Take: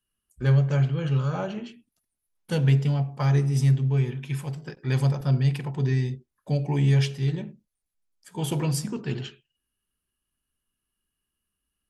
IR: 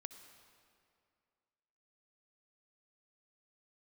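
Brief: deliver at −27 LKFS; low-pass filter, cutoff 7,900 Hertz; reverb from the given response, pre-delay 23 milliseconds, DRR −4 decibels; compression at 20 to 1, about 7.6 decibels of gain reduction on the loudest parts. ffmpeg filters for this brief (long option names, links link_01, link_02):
-filter_complex "[0:a]lowpass=7900,acompressor=threshold=-23dB:ratio=20,asplit=2[link_01][link_02];[1:a]atrim=start_sample=2205,adelay=23[link_03];[link_02][link_03]afir=irnorm=-1:irlink=0,volume=9dB[link_04];[link_01][link_04]amix=inputs=2:normalize=0,volume=-4dB"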